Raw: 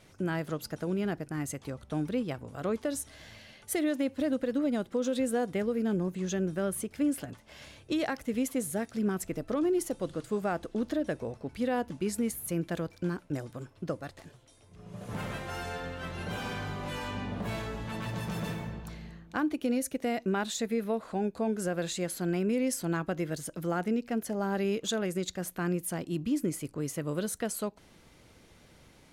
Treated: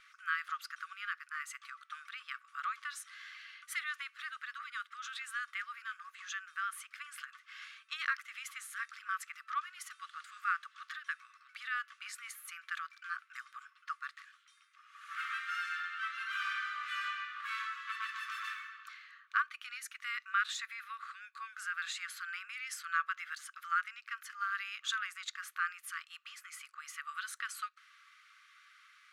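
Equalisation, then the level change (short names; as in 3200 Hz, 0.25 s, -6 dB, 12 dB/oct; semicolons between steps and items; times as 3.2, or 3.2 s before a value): brick-wall FIR high-pass 1100 Hz; tilt -4 dB/oct; high shelf 4300 Hz -7.5 dB; +9.0 dB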